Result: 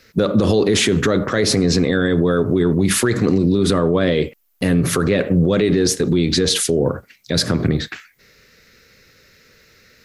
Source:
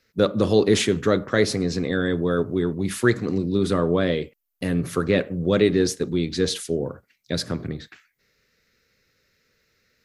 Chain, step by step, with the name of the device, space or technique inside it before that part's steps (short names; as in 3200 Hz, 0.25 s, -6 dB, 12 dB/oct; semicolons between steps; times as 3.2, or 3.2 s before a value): loud club master (compressor 1.5:1, threshold -26 dBFS, peak gain reduction 5.5 dB; hard clip -10.5 dBFS, distortion -47 dB; maximiser +21.5 dB); gain -6 dB